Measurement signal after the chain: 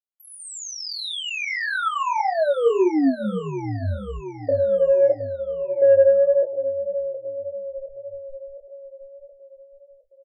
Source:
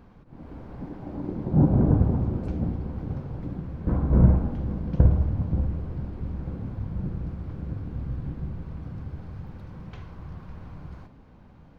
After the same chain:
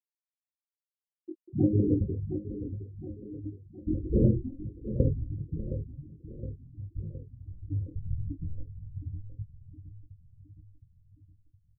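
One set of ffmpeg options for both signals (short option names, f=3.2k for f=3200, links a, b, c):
-filter_complex "[0:a]acrusher=bits=5:mode=log:mix=0:aa=0.000001,dynaudnorm=f=400:g=11:m=11.5dB,lowshelf=f=260:t=q:w=1.5:g=-7,flanger=delay=7.2:depth=3.5:regen=34:speed=0.18:shape=sinusoidal,afftfilt=real='re*gte(hypot(re,im),0.2)':imag='im*gte(hypot(re,im),0.2)':win_size=1024:overlap=0.75,asplit=2[a][b];[b]aecho=0:1:716|1432|2148|2864|3580|4296:0.251|0.136|0.0732|0.0396|0.0214|0.0115[c];[a][c]amix=inputs=2:normalize=0,flanger=delay=19.5:depth=4.5:speed=1.7,acontrast=30,asplit=2[d][e];[e]adelay=19,volume=-8.5dB[f];[d][f]amix=inputs=2:normalize=0"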